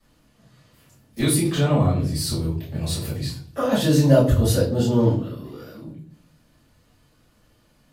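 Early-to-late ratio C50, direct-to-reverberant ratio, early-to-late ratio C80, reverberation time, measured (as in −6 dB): 6.5 dB, −11.0 dB, 11.0 dB, 0.50 s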